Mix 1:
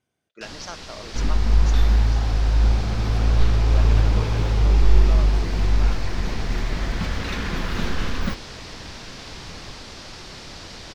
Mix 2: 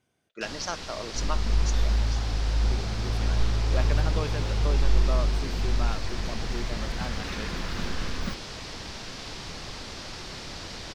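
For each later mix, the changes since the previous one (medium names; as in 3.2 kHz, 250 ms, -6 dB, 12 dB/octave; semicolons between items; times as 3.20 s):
speech +4.0 dB; second sound -7.0 dB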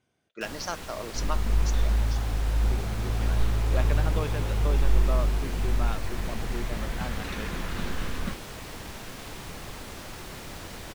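first sound: remove resonant low-pass 5 kHz, resonance Q 2.3; master: add treble shelf 8.5 kHz -6.5 dB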